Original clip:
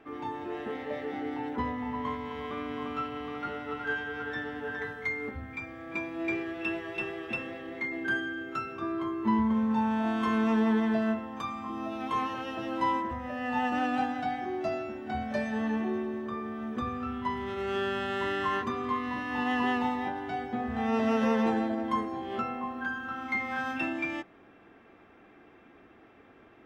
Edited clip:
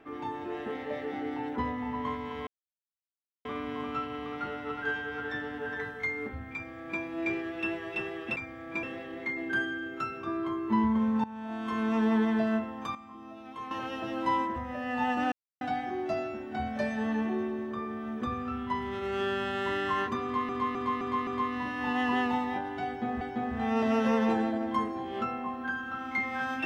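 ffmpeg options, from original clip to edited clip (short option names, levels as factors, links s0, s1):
-filter_complex "[0:a]asplit=14[s0][s1][s2][s3][s4][s5][s6][s7][s8][s9][s10][s11][s12][s13];[s0]atrim=end=2.47,asetpts=PTS-STARTPTS,afade=t=out:st=2.466:d=0.004:c=hsin,apad=pad_dur=0.98[s14];[s1]atrim=start=2.47:end=7.382,asetpts=PTS-STARTPTS,afade=t=in:d=0.004:c=hsin[s15];[s2]atrim=start=5.558:end=6.032[s16];[s3]atrim=start=7.378:end=9.79,asetpts=PTS-STARTPTS,afade=t=out:st=2.408:d=0.004:c=hsin:silence=0.125893[s17];[s4]atrim=start=9.79:end=11.502,asetpts=PTS-STARTPTS,afade=t=in:d=0.88:silence=0.125893[s18];[s5]atrim=start=11.498:end=12.262,asetpts=PTS-STARTPTS,volume=0.299[s19];[s6]atrim=start=12.258:end=13.87,asetpts=PTS-STARTPTS,afade=t=out:st=1.608:d=0.004:c=hsin[s20];[s7]atrim=start=13.87:end=14.16,asetpts=PTS-STARTPTS,volume=0[s21];[s8]atrim=start=14.16:end=19.042,asetpts=PTS-STARTPTS,afade=t=in:d=0.004:c=hsin[s22];[s9]atrim=start=18.778:end=19.042[s23];[s10]atrim=start=18.778:end=19.042[s24];[s11]atrim=start=18.778:end=19.042[s25];[s12]atrim=start=18.778:end=20.722[s26];[s13]atrim=start=20.378[s27];[s14][s15]concat=n=2:v=0:a=1[s28];[s28][s16]acrossfade=d=0.004:c1=hsin:c2=hsin[s29];[s17][s18]concat=n=2:v=0:a=1[s30];[s29][s30]acrossfade=d=0.004:c1=hsin:c2=hsin[s31];[s31][s19]acrossfade=d=0.004:c1=hsin:c2=hsin[s32];[s20][s21][s22]concat=n=3:v=0:a=1[s33];[s32][s33]acrossfade=d=0.004:c1=hsin:c2=hsin[s34];[s34][s23]acrossfade=d=0.004:c1=hsin:c2=hsin[s35];[s35][s24]acrossfade=d=0.004:c1=hsin:c2=hsin[s36];[s36][s25]acrossfade=d=0.004:c1=hsin:c2=hsin[s37];[s37][s26]acrossfade=d=0.004:c1=hsin:c2=hsin[s38];[s38][s27]acrossfade=d=0.004:c1=hsin:c2=hsin"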